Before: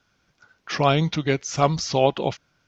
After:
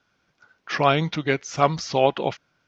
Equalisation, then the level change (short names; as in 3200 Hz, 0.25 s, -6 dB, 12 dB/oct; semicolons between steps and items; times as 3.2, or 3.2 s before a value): high shelf 6200 Hz -10 dB; dynamic EQ 1700 Hz, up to +5 dB, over -35 dBFS, Q 1.1; low shelf 120 Hz -9 dB; 0.0 dB